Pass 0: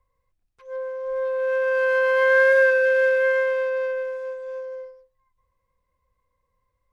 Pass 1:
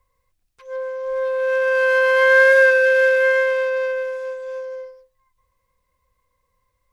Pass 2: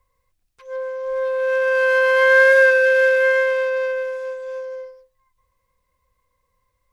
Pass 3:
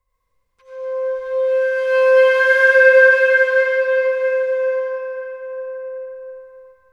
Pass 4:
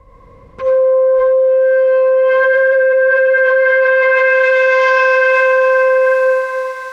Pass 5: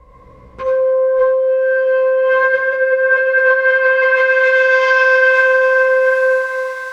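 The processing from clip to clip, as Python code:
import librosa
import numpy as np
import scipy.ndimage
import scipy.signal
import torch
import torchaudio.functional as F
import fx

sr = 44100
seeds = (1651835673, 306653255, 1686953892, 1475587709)

y1 = fx.high_shelf(x, sr, hz=2100.0, db=8.0)
y1 = F.gain(torch.from_numpy(y1), 2.5).numpy()
y2 = y1
y3 = y2 + 10.0 ** (-19.0 / 20.0) * np.pad(y2, (int(900 * sr / 1000.0), 0))[:len(y2)]
y3 = fx.rev_freeverb(y3, sr, rt60_s=4.9, hf_ratio=0.45, predelay_ms=45, drr_db=-9.5)
y3 = F.gain(torch.from_numpy(y3), -8.0).numpy()
y4 = fx.filter_sweep_bandpass(y3, sr, from_hz=220.0, to_hz=4300.0, start_s=2.59, end_s=4.95, q=0.73)
y4 = y4 + 10.0 ** (-11.0 / 20.0) * np.pad(y4, (int(95 * sr / 1000.0), 0))[:len(y4)]
y4 = fx.env_flatten(y4, sr, amount_pct=100)
y5 = fx.doubler(y4, sr, ms=16.0, db=-2.5)
y5 = F.gain(torch.from_numpy(y5), -1.5).numpy()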